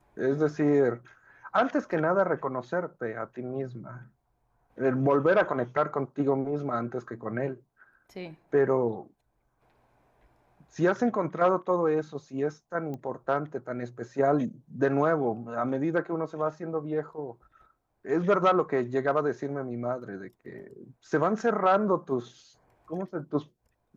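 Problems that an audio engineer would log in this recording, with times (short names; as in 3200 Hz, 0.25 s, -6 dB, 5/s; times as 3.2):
12.94 pop -26 dBFS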